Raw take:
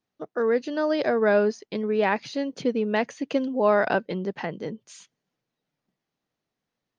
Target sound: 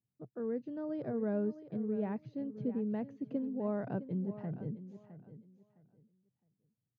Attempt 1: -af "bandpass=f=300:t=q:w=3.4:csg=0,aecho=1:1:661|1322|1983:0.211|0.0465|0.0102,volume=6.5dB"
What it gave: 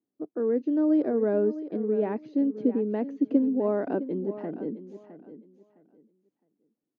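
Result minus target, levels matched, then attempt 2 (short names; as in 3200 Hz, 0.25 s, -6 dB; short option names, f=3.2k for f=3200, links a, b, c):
125 Hz band -11.0 dB
-af "bandpass=f=120:t=q:w=3.4:csg=0,aecho=1:1:661|1322|1983:0.211|0.0465|0.0102,volume=6.5dB"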